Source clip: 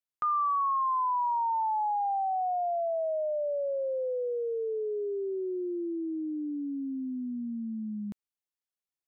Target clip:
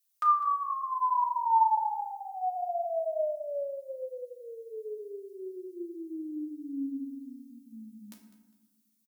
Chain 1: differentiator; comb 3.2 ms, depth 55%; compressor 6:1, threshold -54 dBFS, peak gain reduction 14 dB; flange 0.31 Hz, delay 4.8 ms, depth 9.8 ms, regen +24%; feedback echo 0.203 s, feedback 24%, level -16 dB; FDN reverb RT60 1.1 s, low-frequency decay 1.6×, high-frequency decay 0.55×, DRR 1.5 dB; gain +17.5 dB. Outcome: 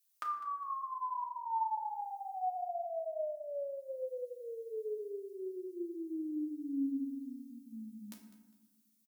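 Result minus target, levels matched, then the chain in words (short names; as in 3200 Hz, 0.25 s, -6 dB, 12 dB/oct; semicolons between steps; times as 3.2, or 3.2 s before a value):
compressor: peak gain reduction +14 dB
differentiator; comb 3.2 ms, depth 55%; flange 0.31 Hz, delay 4.8 ms, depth 9.8 ms, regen +24%; feedback echo 0.203 s, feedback 24%, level -16 dB; FDN reverb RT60 1.1 s, low-frequency decay 1.6×, high-frequency decay 0.55×, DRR 1.5 dB; gain +17.5 dB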